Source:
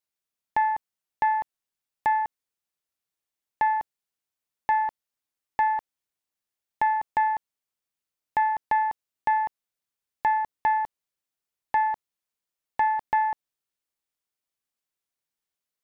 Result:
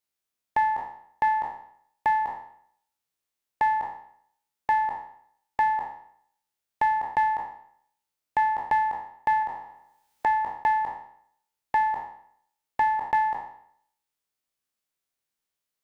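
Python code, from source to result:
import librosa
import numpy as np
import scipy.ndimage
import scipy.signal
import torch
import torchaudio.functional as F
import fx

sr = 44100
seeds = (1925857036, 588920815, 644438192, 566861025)

y = fx.spec_trails(x, sr, decay_s=0.64)
y = fx.band_squash(y, sr, depth_pct=70, at=(9.42, 10.26))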